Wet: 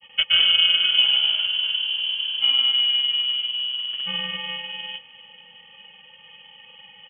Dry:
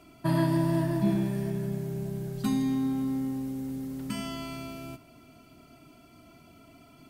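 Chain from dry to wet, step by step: grains 0.1 s, grains 20/s, pitch spread up and down by 0 st; inverted band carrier 3200 Hz; gain +8.5 dB

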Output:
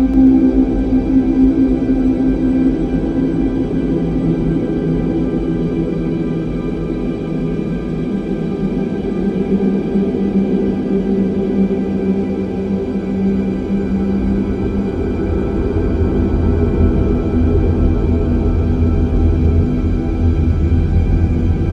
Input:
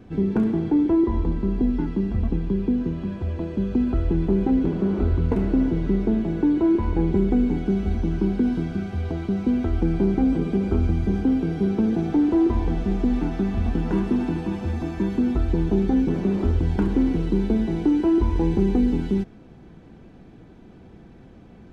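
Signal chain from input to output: Paulstretch 35×, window 0.25 s, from 10.26; frequency-shifting echo 0.136 s, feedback 51%, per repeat +62 Hz, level -10.5 dB; gain +5.5 dB

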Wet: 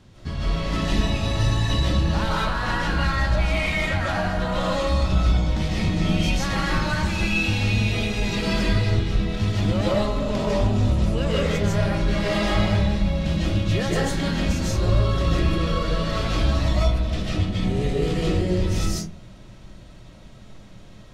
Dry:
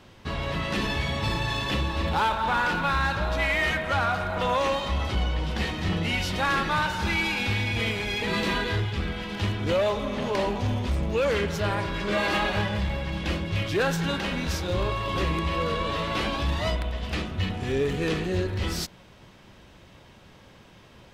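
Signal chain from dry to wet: LPF 9500 Hz 12 dB/oct; tone controls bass +12 dB, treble +5 dB; formant shift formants +2 st; digital reverb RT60 0.43 s, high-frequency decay 0.4×, pre-delay 0.11 s, DRR -5.5 dB; gain -7 dB

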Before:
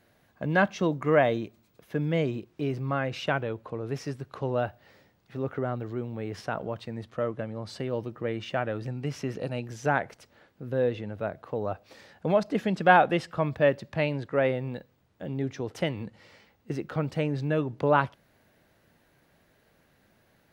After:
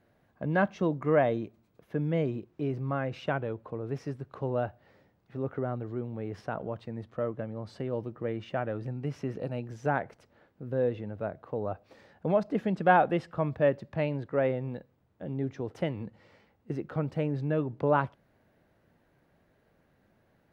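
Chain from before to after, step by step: high shelf 2200 Hz -12 dB; gain -1.5 dB

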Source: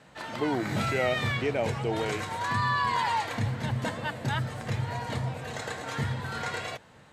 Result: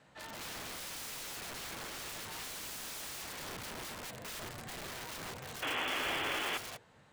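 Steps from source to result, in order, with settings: notches 60/120/180/240/300/360/420/480 Hz; wrapped overs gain 31 dB; painted sound noise, 5.62–6.58, 240–3500 Hz -28 dBFS; gain -8 dB

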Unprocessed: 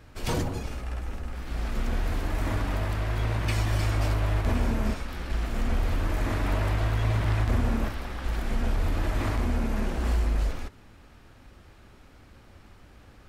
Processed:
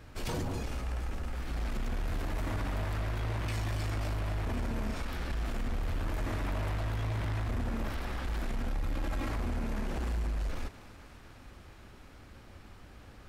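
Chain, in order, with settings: 8.68–9.31 comb 3.7 ms, depth 96%; limiter -23.5 dBFS, peak gain reduction 10.5 dB; soft clip -27 dBFS, distortion -18 dB; thinning echo 0.245 s, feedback 78%, high-pass 420 Hz, level -14.5 dB

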